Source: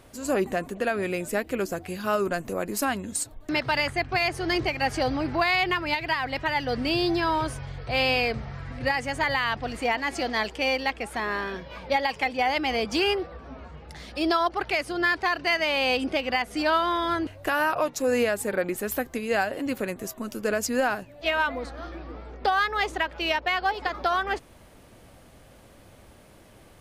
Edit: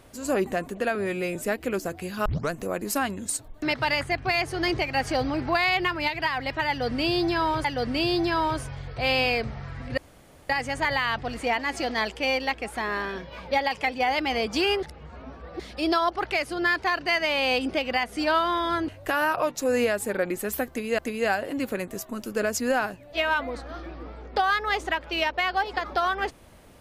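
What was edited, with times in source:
0.95–1.22 stretch 1.5×
2.12 tape start 0.25 s
6.55–7.51 loop, 2 plays
8.88 insert room tone 0.52 s
13.21–13.98 reverse
19.07–19.37 loop, 2 plays

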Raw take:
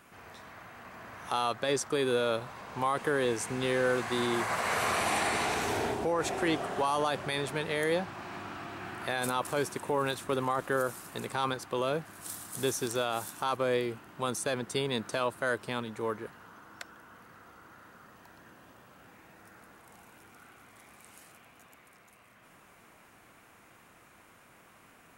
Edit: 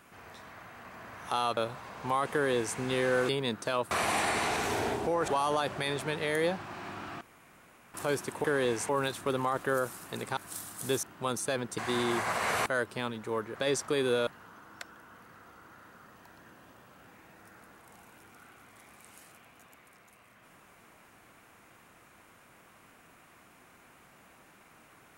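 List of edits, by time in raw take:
1.57–2.29 move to 16.27
3.04–3.49 copy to 9.92
4.01–4.89 swap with 14.76–15.38
6.26–6.76 cut
8.69–9.42 room tone
11.4–12.11 cut
12.77–14.01 cut

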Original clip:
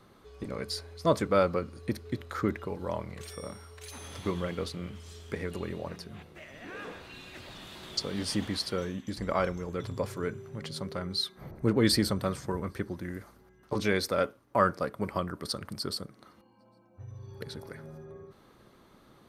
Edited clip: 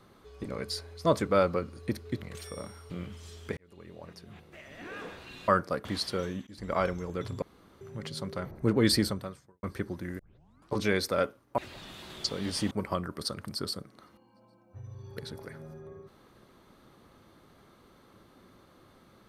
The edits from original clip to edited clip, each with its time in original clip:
2.22–3.08 cut
3.76–4.73 cut
5.4–6.62 fade in
7.31–8.44 swap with 14.58–14.95
9.06–9.36 fade in, from -21 dB
10.01–10.4 room tone
11.04–11.45 cut
12.02–12.63 fade out quadratic
13.19 tape start 0.54 s

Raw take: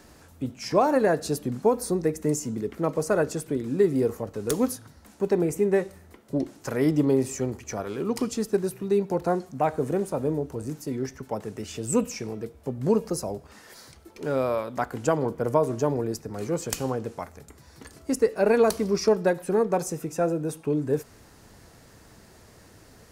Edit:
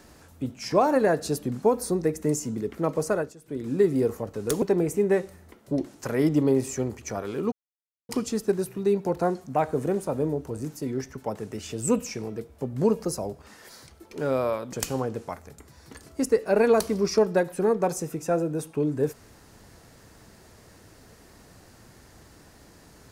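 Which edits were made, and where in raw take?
3.07–3.69 dip -18.5 dB, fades 0.28 s
4.62–5.24 cut
8.14 insert silence 0.57 s
14.78–16.63 cut

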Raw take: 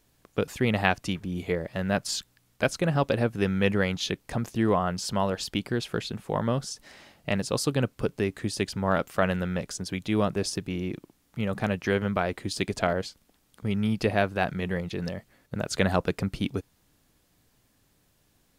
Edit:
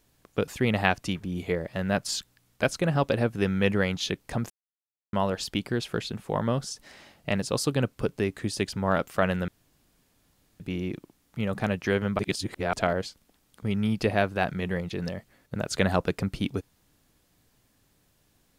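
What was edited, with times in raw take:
4.5–5.13 mute
9.48–10.6 room tone
12.19–12.73 reverse

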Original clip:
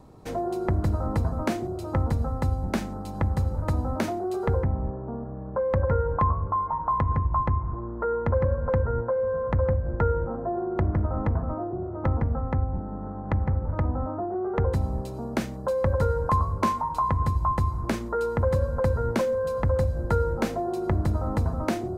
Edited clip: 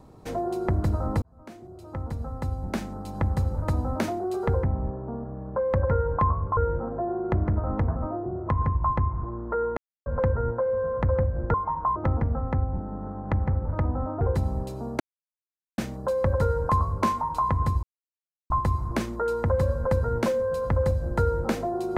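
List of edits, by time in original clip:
1.22–3.29 fade in
6.57–6.99 swap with 10.04–11.96
8.27–8.56 mute
14.21–14.59 cut
15.38 insert silence 0.78 s
17.43 insert silence 0.67 s

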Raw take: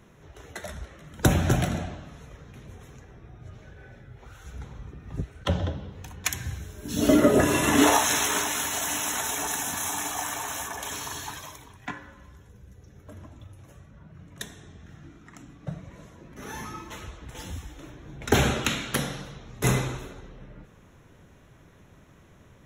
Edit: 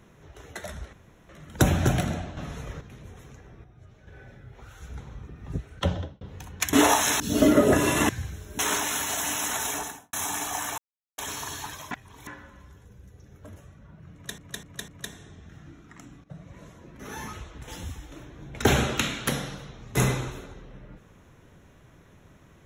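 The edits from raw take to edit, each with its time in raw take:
0.93 insert room tone 0.36 s
2.01–2.45 gain +8.5 dB
3.28–3.71 gain -7 dB
5.51–5.85 fade out
6.37–6.87 swap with 7.76–8.23
9.35–9.77 studio fade out
10.42–10.82 mute
11.55–11.91 reverse
13.2–13.68 cut
14.25–14.5 loop, 4 plays
15.61–15.95 fade in, from -17 dB
16.7–17 cut

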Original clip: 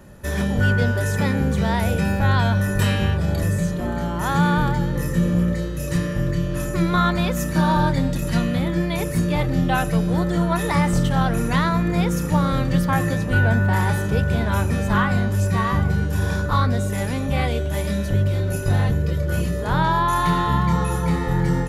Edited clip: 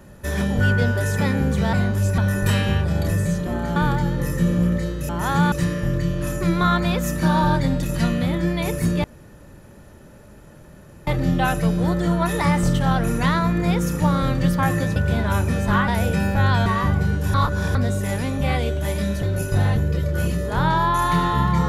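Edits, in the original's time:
1.73–2.51 swap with 15.1–15.55
4.09–4.52 move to 5.85
9.37 insert room tone 2.03 s
13.26–14.18 cut
16.23–16.64 reverse
18.12–18.37 cut

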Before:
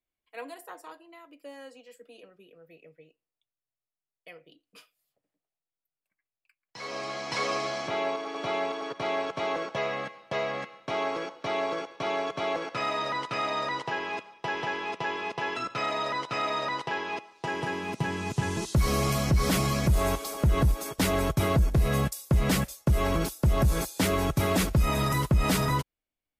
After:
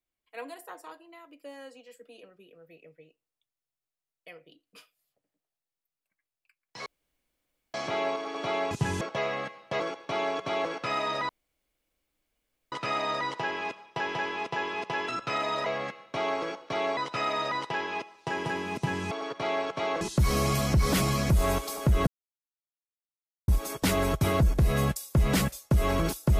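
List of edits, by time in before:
6.86–7.74 room tone
8.71–9.61 swap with 18.28–18.58
10.4–11.71 move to 16.14
13.2 insert room tone 1.43 s
20.64 insert silence 1.41 s

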